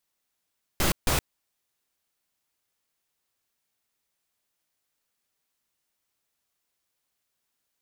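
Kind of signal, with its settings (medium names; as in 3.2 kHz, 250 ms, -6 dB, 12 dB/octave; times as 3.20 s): noise bursts pink, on 0.12 s, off 0.15 s, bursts 2, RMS -23 dBFS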